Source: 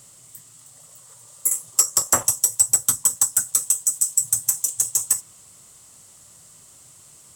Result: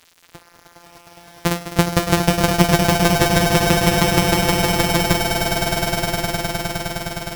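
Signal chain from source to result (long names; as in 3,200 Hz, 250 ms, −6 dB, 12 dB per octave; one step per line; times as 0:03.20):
samples sorted by size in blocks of 256 samples
echo that builds up and dies away 103 ms, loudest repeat 8, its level −6.5 dB
centre clipping without the shift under −42 dBFS
level +2 dB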